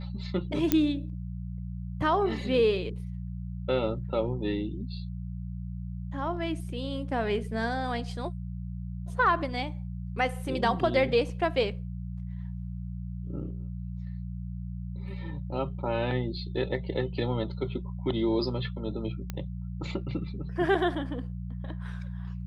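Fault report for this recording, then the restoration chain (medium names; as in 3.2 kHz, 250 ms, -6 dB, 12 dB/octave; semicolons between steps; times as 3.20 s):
hum 60 Hz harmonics 3 -36 dBFS
0.72 s: pop -9 dBFS
19.30 s: pop -19 dBFS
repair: de-click; de-hum 60 Hz, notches 3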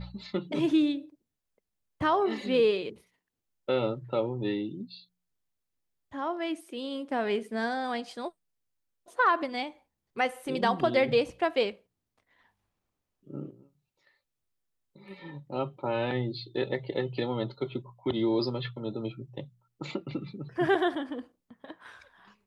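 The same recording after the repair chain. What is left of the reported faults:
nothing left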